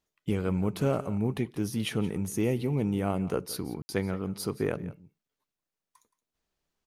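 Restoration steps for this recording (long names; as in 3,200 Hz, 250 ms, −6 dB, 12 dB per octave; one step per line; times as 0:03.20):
ambience match 0:03.82–0:03.89
echo removal 172 ms −17.5 dB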